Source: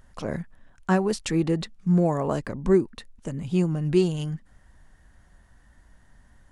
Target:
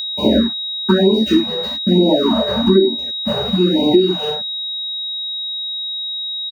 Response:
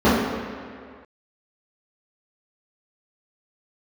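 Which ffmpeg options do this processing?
-filter_complex "[0:a]equalizer=frequency=7500:width=0.7:gain=-5.5,aecho=1:1:3.2:0.76,aeval=exprs='val(0)*gte(abs(val(0)),0.0282)':channel_layout=same,lowshelf=frequency=110:gain=-11[link_01];[1:a]atrim=start_sample=2205,afade=type=out:start_time=0.17:duration=0.01,atrim=end_sample=7938[link_02];[link_01][link_02]afir=irnorm=-1:irlink=0,acompressor=threshold=-1dB:ratio=12,aeval=exprs='val(0)+0.178*sin(2*PI*3800*n/s)':channel_layout=same,crystalizer=i=1:c=0,afftfilt=real='re*(1-between(b*sr/1024,270*pow(1500/270,0.5+0.5*sin(2*PI*1.1*pts/sr))/1.41,270*pow(1500/270,0.5+0.5*sin(2*PI*1.1*pts/sr))*1.41))':imag='im*(1-between(b*sr/1024,270*pow(1500/270,0.5+0.5*sin(2*PI*1.1*pts/sr))/1.41,270*pow(1500/270,0.5+0.5*sin(2*PI*1.1*pts/sr))*1.41))':win_size=1024:overlap=0.75,volume=-8.5dB"

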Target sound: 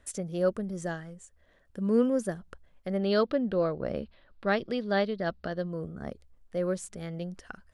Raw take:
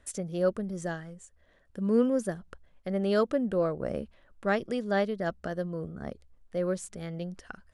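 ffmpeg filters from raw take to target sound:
ffmpeg -i in.wav -filter_complex "[0:a]asettb=1/sr,asplit=3[link_01][link_02][link_03];[link_01]atrim=end=2.974[link_04];[link_02]atrim=start=2.97:end=5.68,asetpts=PTS-STARTPTS,afade=type=in:duration=0.004:curve=qsin,afade=type=out:start_time=2.706:duration=0.004:curve=qsin,highshelf=frequency=5600:width_type=q:width=3:gain=-9[link_05];[link_03]atrim=start=5.676[link_06];[link_04][link_05]acrossfade=duration=0.004:curve1=hsin:curve2=qsin[link_07];[link_07][link_06]acrossfade=duration=0.004:curve1=qsin:curve2=hsin" out.wav

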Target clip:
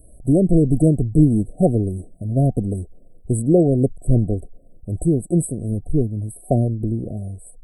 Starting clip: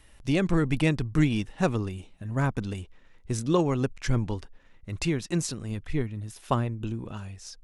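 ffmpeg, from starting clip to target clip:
ffmpeg -i in.wav -af "acontrast=88,afftfilt=real='re*(1-between(b*sr/4096,750,7800))':imag='im*(1-between(b*sr/4096,750,7800))':win_size=4096:overlap=0.75,volume=2.5dB" out.wav

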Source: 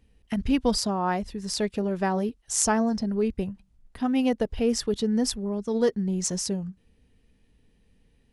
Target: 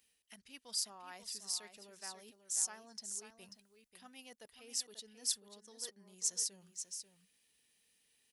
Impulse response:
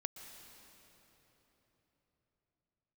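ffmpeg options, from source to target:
-af "areverse,acompressor=threshold=-36dB:ratio=12,areverse,aderivative,aecho=1:1:539:0.355,volume=6.5dB"

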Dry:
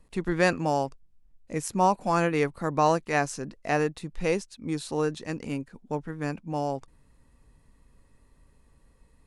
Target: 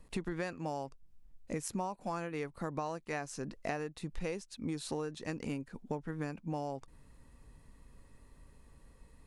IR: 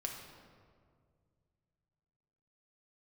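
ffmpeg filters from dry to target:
-af "acompressor=threshold=-35dB:ratio=16,volume=1.5dB"

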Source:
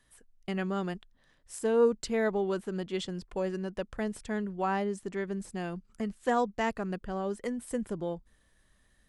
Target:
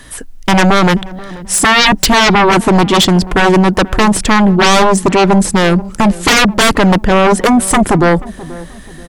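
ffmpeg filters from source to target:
ffmpeg -i in.wav -filter_complex "[0:a]equalizer=frequency=280:width=7.7:gain=6,aeval=exprs='0.211*sin(PI/2*8.91*val(0)/0.211)':channel_layout=same,asplit=2[link_01][link_02];[link_02]adelay=483,lowpass=frequency=840:poles=1,volume=-17dB,asplit=2[link_03][link_04];[link_04]adelay=483,lowpass=frequency=840:poles=1,volume=0.42,asplit=2[link_05][link_06];[link_06]adelay=483,lowpass=frequency=840:poles=1,volume=0.42,asplit=2[link_07][link_08];[link_08]adelay=483,lowpass=frequency=840:poles=1,volume=0.42[link_09];[link_01][link_03][link_05][link_07][link_09]amix=inputs=5:normalize=0,volume=8.5dB" out.wav

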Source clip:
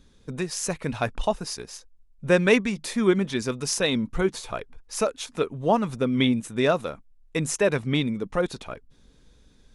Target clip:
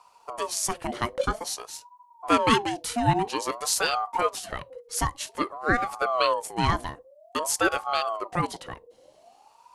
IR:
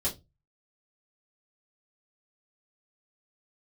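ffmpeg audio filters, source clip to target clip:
-filter_complex "[0:a]crystalizer=i=1:c=0,asplit=2[link_01][link_02];[1:a]atrim=start_sample=2205[link_03];[link_02][link_03]afir=irnorm=-1:irlink=0,volume=-23.5dB[link_04];[link_01][link_04]amix=inputs=2:normalize=0,aeval=exprs='val(0)*sin(2*PI*730*n/s+730*0.35/0.51*sin(2*PI*0.51*n/s))':channel_layout=same"

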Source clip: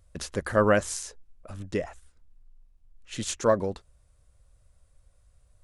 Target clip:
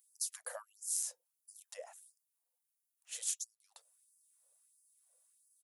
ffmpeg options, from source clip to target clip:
ffmpeg -i in.wav -af "acompressor=threshold=-31dB:ratio=16,firequalizer=gain_entry='entry(250,0);entry(1300,-14);entry(4100,-9);entry(11000,9)':delay=0.05:min_phase=1,flanger=delay=1.1:depth=2:regen=-88:speed=0.51:shape=triangular,asubboost=boost=12:cutoff=170,afftfilt=real='re*gte(b*sr/1024,440*pow(4700/440,0.5+0.5*sin(2*PI*1.5*pts/sr)))':imag='im*gte(b*sr/1024,440*pow(4700/440,0.5+0.5*sin(2*PI*1.5*pts/sr)))':win_size=1024:overlap=0.75,volume=6.5dB" out.wav

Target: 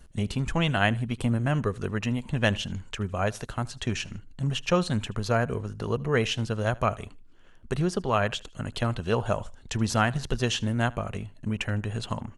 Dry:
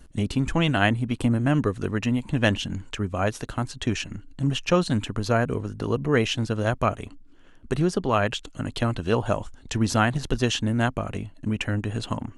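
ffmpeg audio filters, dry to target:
ffmpeg -i in.wav -filter_complex "[0:a]equalizer=frequency=290:width_type=o:width=0.33:gain=-10,asplit=2[link_01][link_02];[link_02]aecho=0:1:77|154:0.0668|0.0247[link_03];[link_01][link_03]amix=inputs=2:normalize=0,volume=-2dB" out.wav

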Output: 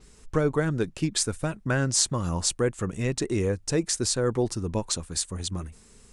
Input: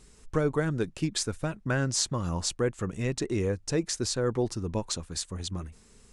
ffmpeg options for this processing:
ffmpeg -i in.wav -af "adynamicequalizer=threshold=0.00316:dfrequency=9100:dqfactor=1.7:tfrequency=9100:tqfactor=1.7:attack=5:release=100:ratio=0.375:range=3.5:mode=boostabove:tftype=bell,volume=2.5dB" out.wav

